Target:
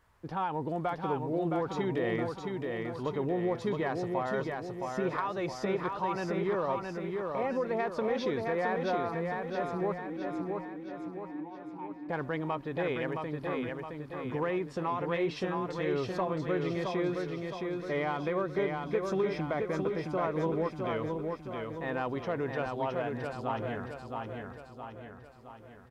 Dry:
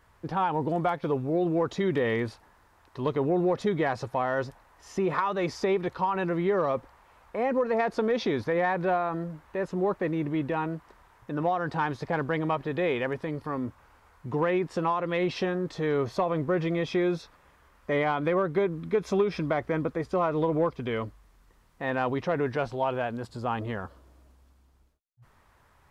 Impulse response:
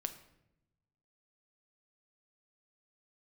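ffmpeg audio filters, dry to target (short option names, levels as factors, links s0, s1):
-filter_complex "[0:a]asettb=1/sr,asplit=3[s0][s1][s2];[s0]atrim=end=9.984[s3];[s1]atrim=start=9.98:end=12.09,asetpts=PTS-STARTPTS,afade=t=in:d=0.004:c=qsin,afade=t=out:st=2.106:d=0.004:c=qsin,asplit=3[s4][s5][s6];[s4]bandpass=f=300:t=q:w=8,volume=1[s7];[s5]bandpass=f=870:t=q:w=8,volume=0.501[s8];[s6]bandpass=f=2240:t=q:w=8,volume=0.355[s9];[s7][s8][s9]amix=inputs=3:normalize=0[s10];[s2]atrim=start=12.086[s11];[s3][s10]acrossfade=d=0.004:c1=hsin:c2=qsin[s12];[s12][s11]acrossfade=d=0.004:c1=qsin:c2=hsin,aecho=1:1:667|1334|2001|2668|3335|4002|4669:0.631|0.322|0.164|0.0837|0.0427|0.0218|0.0111,volume=0.501"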